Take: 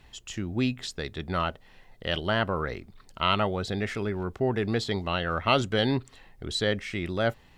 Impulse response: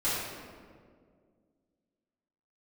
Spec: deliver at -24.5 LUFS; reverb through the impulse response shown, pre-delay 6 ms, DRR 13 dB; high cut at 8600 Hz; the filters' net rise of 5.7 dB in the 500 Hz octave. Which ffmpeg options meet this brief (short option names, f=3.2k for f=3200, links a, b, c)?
-filter_complex "[0:a]lowpass=8.6k,equalizer=f=500:t=o:g=7,asplit=2[a][b];[1:a]atrim=start_sample=2205,adelay=6[c];[b][c]afir=irnorm=-1:irlink=0,volume=-23dB[d];[a][d]amix=inputs=2:normalize=0,volume=1dB"